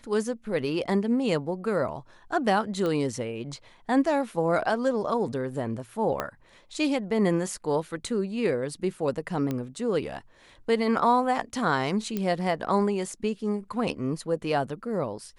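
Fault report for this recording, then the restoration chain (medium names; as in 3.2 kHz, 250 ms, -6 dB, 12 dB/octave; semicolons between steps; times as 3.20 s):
2.86 s: pop -18 dBFS
6.20 s: pop -14 dBFS
9.51 s: pop -17 dBFS
12.17 s: pop -16 dBFS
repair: de-click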